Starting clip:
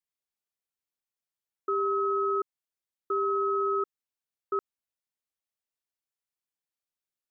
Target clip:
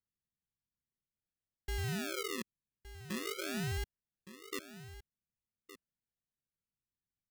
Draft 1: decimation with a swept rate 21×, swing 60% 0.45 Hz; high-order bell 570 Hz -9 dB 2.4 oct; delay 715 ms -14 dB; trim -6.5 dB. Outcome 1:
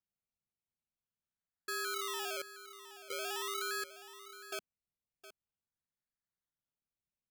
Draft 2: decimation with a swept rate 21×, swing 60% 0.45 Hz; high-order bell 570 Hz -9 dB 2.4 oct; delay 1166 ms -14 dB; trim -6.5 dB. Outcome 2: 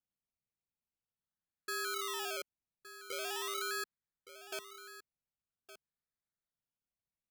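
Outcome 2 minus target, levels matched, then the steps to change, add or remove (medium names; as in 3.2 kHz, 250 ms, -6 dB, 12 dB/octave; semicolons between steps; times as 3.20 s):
decimation with a swept rate: distortion -11 dB
change: decimation with a swept rate 51×, swing 60% 0.45 Hz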